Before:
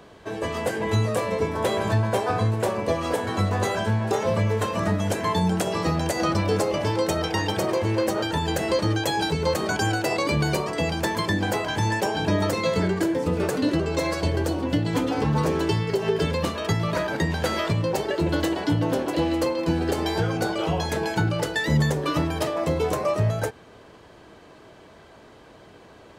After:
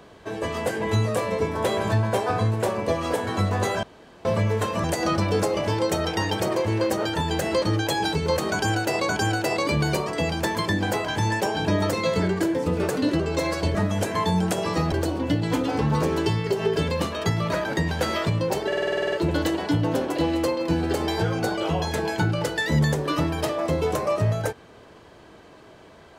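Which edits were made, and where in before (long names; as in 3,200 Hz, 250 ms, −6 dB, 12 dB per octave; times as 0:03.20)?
0:03.83–0:04.25: fill with room tone
0:04.84–0:06.01: move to 0:14.35
0:09.69–0:10.26: repeat, 2 plays
0:18.10: stutter 0.05 s, 10 plays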